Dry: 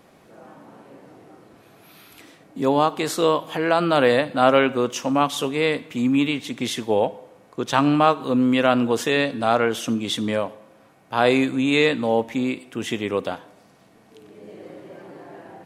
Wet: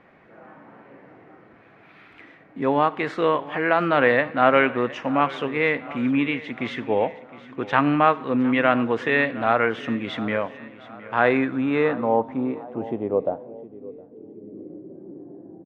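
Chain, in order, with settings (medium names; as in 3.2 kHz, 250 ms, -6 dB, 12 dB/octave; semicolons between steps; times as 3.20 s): feedback delay 714 ms, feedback 50%, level -18 dB; low-pass sweep 2 kHz -> 320 Hz, 11.07–14.55 s; trim -2.5 dB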